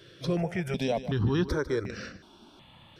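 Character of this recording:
notches that jump at a steady rate 2.7 Hz 230–3,300 Hz

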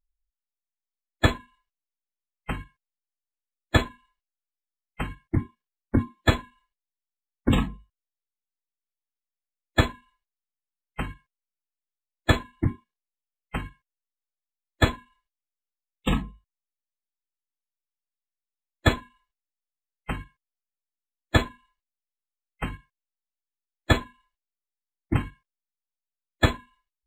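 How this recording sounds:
background noise floor −91 dBFS
spectral slope −4.5 dB per octave

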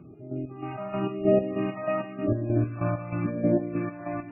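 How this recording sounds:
phaser sweep stages 2, 0.92 Hz, lowest notch 370–1,100 Hz
chopped level 3.2 Hz, depth 65%, duty 45%
MP3

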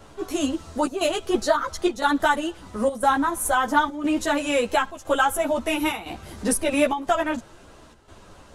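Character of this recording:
chopped level 0.99 Hz, depth 65%, duty 85%
a shimmering, thickened sound

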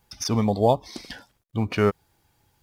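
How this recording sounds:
background noise floor −72 dBFS
spectral slope −6.0 dB per octave

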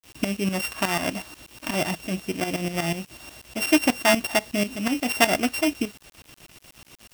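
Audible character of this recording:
a buzz of ramps at a fixed pitch in blocks of 16 samples
tremolo saw up 8.2 Hz, depth 75%
a quantiser's noise floor 8 bits, dither none

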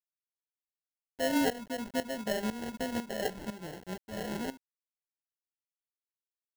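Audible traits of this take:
a quantiser's noise floor 8 bits, dither none
tremolo saw up 2 Hz, depth 80%
aliases and images of a low sample rate 1,200 Hz, jitter 0%

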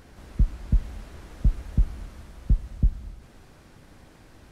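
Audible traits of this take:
background noise floor −52 dBFS
spectral slope −10.0 dB per octave

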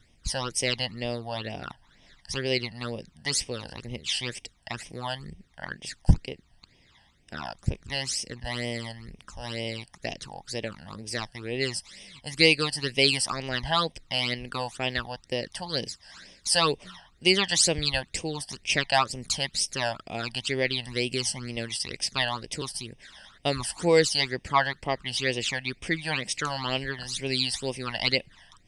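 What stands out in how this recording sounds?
phaser sweep stages 12, 2.1 Hz, lowest notch 380–1,400 Hz

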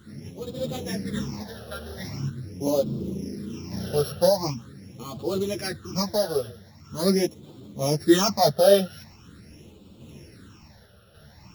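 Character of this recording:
a buzz of ramps at a fixed pitch in blocks of 8 samples
phaser sweep stages 8, 0.43 Hz, lowest notch 280–1,800 Hz
sample-and-hold tremolo
a shimmering, thickened sound

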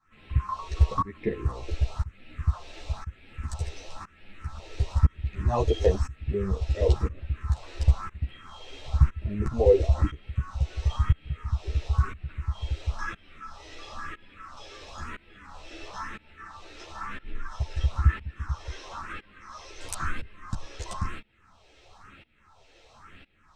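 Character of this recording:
phaser sweep stages 4, 1 Hz, lowest notch 180–1,100 Hz
tremolo saw up 0.99 Hz, depth 95%
a shimmering, thickened sound

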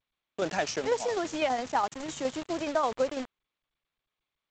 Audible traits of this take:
a quantiser's noise floor 6 bits, dither none
tremolo saw down 12 Hz, depth 50%
G.722

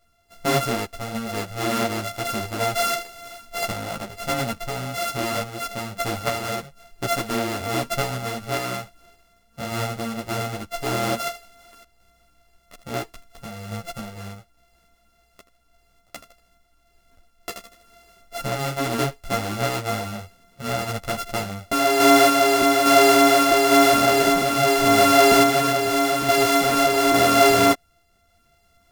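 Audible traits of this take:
a buzz of ramps at a fixed pitch in blocks of 64 samples
sample-and-hold tremolo
a shimmering, thickened sound

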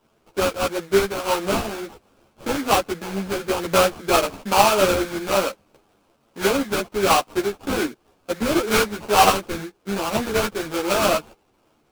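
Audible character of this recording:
aliases and images of a low sample rate 1,900 Hz, jitter 20%
a shimmering, thickened sound

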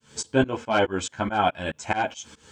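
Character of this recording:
a quantiser's noise floor 12 bits, dither none
tremolo saw up 4.7 Hz, depth 100%
a shimmering, thickened sound

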